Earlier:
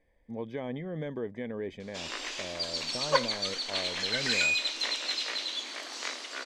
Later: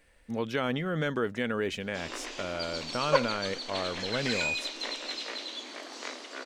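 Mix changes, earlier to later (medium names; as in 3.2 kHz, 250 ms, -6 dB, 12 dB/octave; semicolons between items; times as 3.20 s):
speech: remove boxcar filter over 32 samples; master: add tilt shelf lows +5.5 dB, about 880 Hz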